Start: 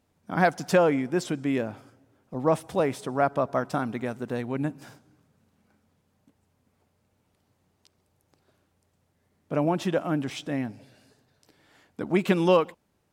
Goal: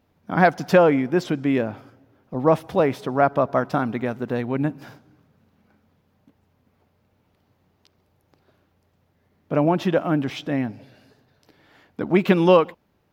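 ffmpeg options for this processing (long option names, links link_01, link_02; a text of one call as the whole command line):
ffmpeg -i in.wav -af "equalizer=frequency=8500:width=1.2:gain=-14.5,volume=5.5dB" out.wav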